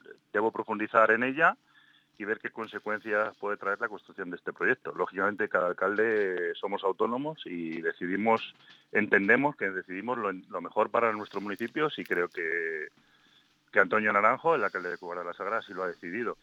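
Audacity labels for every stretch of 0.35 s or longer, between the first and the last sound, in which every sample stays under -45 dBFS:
1.540000	2.200000	silence
12.880000	13.740000	silence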